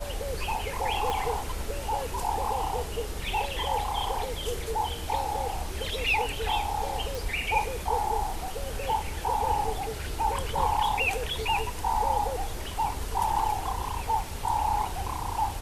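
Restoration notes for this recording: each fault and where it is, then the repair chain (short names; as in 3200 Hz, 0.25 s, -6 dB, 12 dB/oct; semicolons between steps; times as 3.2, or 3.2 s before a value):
1.1 pop -15 dBFS
7.15 pop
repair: de-click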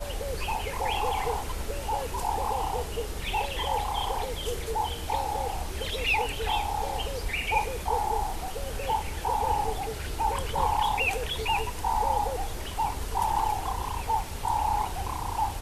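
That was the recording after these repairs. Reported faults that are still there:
1.1 pop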